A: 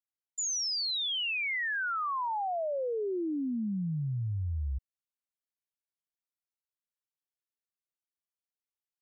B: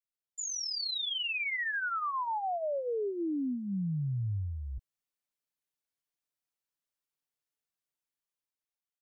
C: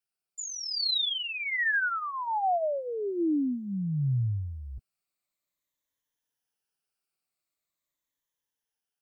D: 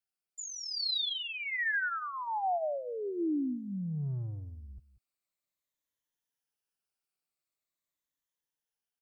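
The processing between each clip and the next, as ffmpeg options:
-af "dynaudnorm=f=320:g=7:m=7dB,aecho=1:1:6.8:0.56,alimiter=limit=-23dB:level=0:latency=1:release=33,volume=-6dB"
-af "afftfilt=real='re*pow(10,9/40*sin(2*PI*(1.1*log(max(b,1)*sr/1024/100)/log(2)-(-0.44)*(pts-256)/sr)))':imag='im*pow(10,9/40*sin(2*PI*(1.1*log(max(b,1)*sr/1024/100)/log(2)-(-0.44)*(pts-256)/sr)))':win_size=1024:overlap=0.75,volume=3dB"
-filter_complex "[0:a]acrossover=split=130[a][b];[a]asoftclip=type=tanh:threshold=-40dB[c];[c][b]amix=inputs=2:normalize=0,aecho=1:1:185:0.15,volume=-4.5dB"

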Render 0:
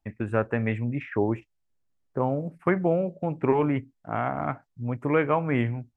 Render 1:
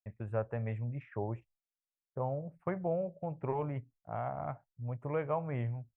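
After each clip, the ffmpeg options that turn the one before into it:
-af "agate=range=-33dB:threshold=-44dB:ratio=3:detection=peak,firequalizer=gain_entry='entry(130,0);entry(270,-13);entry(570,0);entry(1500,-10);entry(3800,-12)':delay=0.05:min_phase=1,volume=-6.5dB"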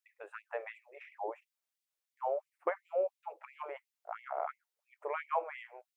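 -af "afftfilt=real='re*gte(b*sr/1024,340*pow(2000/340,0.5+0.5*sin(2*PI*2.9*pts/sr)))':imag='im*gte(b*sr/1024,340*pow(2000/340,0.5+0.5*sin(2*PI*2.9*pts/sr)))':win_size=1024:overlap=0.75,volume=5dB"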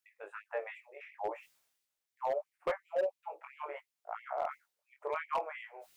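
-af "areverse,acompressor=mode=upward:threshold=-48dB:ratio=2.5,areverse,flanger=delay=19:depth=3.2:speed=0.74,asoftclip=type=hard:threshold=-30dB,volume=4dB"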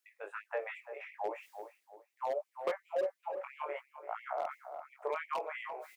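-filter_complex "[0:a]highpass=270,asplit=2[a][b];[b]adelay=341,lowpass=f=1.3k:p=1,volume=-11.5dB,asplit=2[c][d];[d]adelay=341,lowpass=f=1.3k:p=1,volume=0.38,asplit=2[e][f];[f]adelay=341,lowpass=f=1.3k:p=1,volume=0.38,asplit=2[g][h];[h]adelay=341,lowpass=f=1.3k:p=1,volume=0.38[i];[a][c][e][g][i]amix=inputs=5:normalize=0,acrossover=split=450|3000[j][k][l];[k]acompressor=threshold=-38dB:ratio=6[m];[j][m][l]amix=inputs=3:normalize=0,volume=3dB"

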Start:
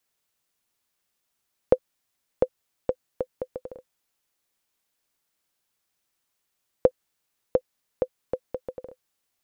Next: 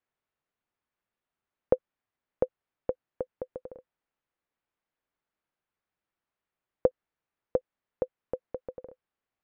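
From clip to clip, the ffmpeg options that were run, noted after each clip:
-af "lowpass=2k,volume=-4dB"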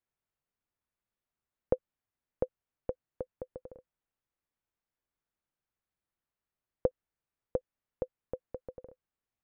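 -af "lowshelf=f=160:g=9.5,volume=-6dB"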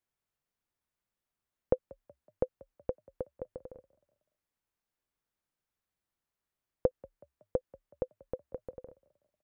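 -filter_complex "[0:a]asplit=4[a][b][c][d];[b]adelay=186,afreqshift=33,volume=-23.5dB[e];[c]adelay=372,afreqshift=66,volume=-30.4dB[f];[d]adelay=558,afreqshift=99,volume=-37.4dB[g];[a][e][f][g]amix=inputs=4:normalize=0,volume=1dB"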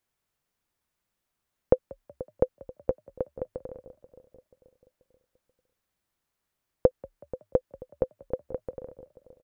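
-filter_complex "[0:a]asplit=2[a][b];[b]adelay=484,lowpass=f=1.1k:p=1,volume=-16dB,asplit=2[c][d];[d]adelay=484,lowpass=f=1.1k:p=1,volume=0.5,asplit=2[e][f];[f]adelay=484,lowpass=f=1.1k:p=1,volume=0.5,asplit=2[g][h];[h]adelay=484,lowpass=f=1.1k:p=1,volume=0.5[i];[a][c][e][g][i]amix=inputs=5:normalize=0,volume=7dB"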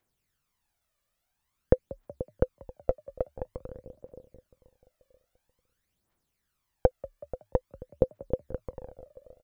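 -af "aphaser=in_gain=1:out_gain=1:delay=1.8:decay=0.62:speed=0.49:type=triangular"

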